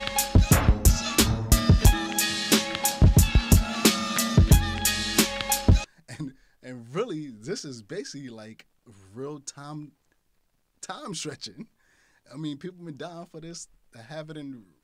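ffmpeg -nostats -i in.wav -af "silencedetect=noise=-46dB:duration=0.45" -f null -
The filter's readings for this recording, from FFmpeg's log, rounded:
silence_start: 9.89
silence_end: 10.83 | silence_duration: 0.94
silence_start: 11.64
silence_end: 12.27 | silence_duration: 0.62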